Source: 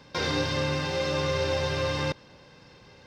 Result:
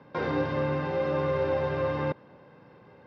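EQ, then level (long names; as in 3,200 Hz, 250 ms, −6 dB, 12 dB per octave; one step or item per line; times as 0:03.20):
high-pass filter 130 Hz 12 dB per octave
low-pass filter 1,400 Hz 12 dB per octave
+1.5 dB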